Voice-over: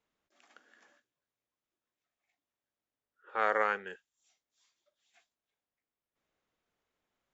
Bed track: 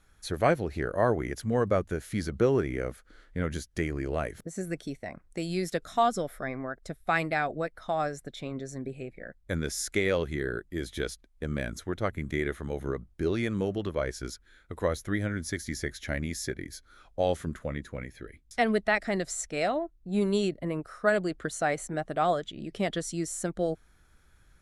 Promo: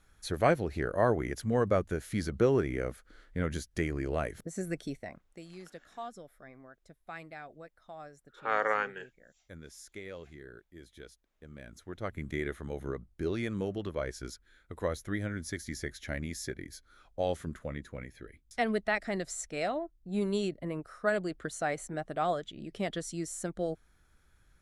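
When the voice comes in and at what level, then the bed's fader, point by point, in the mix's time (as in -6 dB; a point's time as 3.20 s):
5.10 s, 0.0 dB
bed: 4.98 s -1.5 dB
5.50 s -17.5 dB
11.53 s -17.5 dB
12.19 s -4.5 dB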